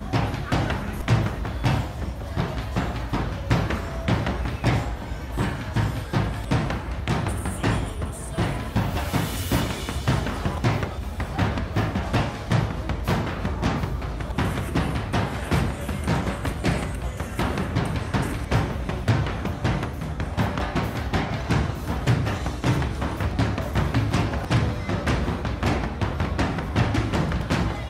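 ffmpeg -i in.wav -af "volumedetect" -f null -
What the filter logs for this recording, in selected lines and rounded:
mean_volume: -24.7 dB
max_volume: -8.6 dB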